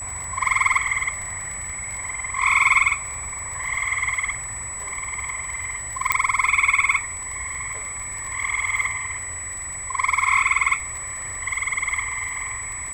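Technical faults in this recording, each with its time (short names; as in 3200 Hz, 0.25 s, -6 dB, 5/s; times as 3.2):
crackle 27/s -29 dBFS
tone 7900 Hz -30 dBFS
6.12 pop -2 dBFS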